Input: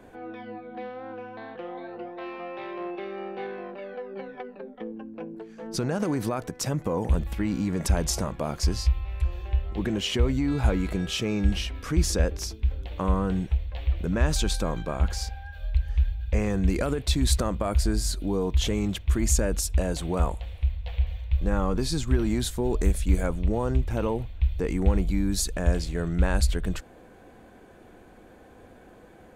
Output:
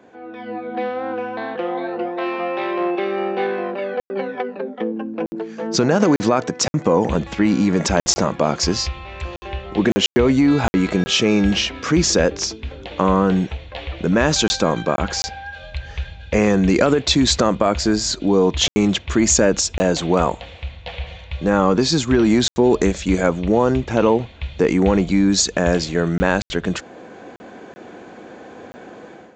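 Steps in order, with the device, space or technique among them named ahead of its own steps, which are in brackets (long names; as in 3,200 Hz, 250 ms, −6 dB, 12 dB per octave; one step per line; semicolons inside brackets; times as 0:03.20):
call with lost packets (high-pass filter 180 Hz 12 dB per octave; downsampling to 16,000 Hz; automatic gain control gain up to 12 dB; dropped packets bursts)
level +1.5 dB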